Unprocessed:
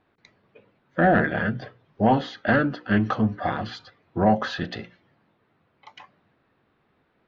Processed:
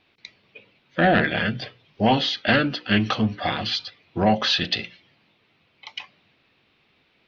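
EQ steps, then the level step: band shelf 3600 Hz +15 dB; 0.0 dB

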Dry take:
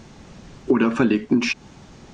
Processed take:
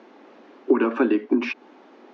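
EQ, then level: steep high-pass 260 Hz 48 dB/oct; LPF 1800 Hz 6 dB/oct; air absorption 170 m; +1.5 dB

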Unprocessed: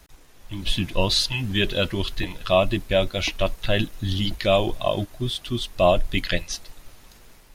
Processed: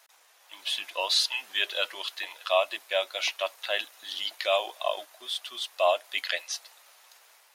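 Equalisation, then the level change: HPF 640 Hz 24 dB/oct; -2.5 dB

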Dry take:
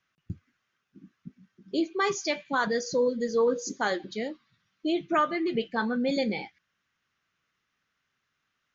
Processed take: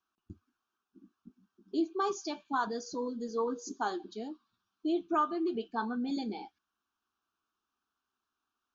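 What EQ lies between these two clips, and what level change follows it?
low shelf 260 Hz -7 dB; high shelf 2300 Hz -8.5 dB; fixed phaser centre 540 Hz, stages 6; 0.0 dB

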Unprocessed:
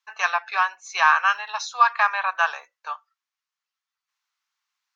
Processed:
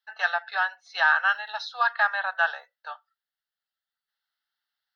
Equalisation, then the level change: bell 6200 Hz -10 dB 0.38 oct; fixed phaser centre 1600 Hz, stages 8; 0.0 dB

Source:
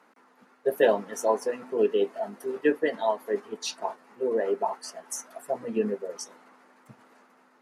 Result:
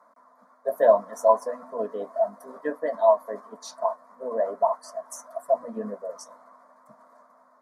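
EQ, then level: band shelf 820 Hz +16 dB 1.1 oct; fixed phaser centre 550 Hz, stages 8; -4.0 dB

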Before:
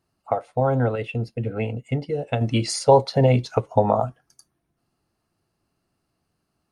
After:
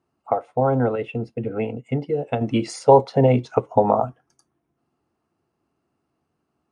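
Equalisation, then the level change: speaker cabinet 100–9600 Hz, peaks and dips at 110 Hz -9 dB, 180 Hz -7 dB, 590 Hz -4 dB, 1700 Hz -3 dB, 4400 Hz -6 dB; high shelf 2300 Hz -12 dB; +4.5 dB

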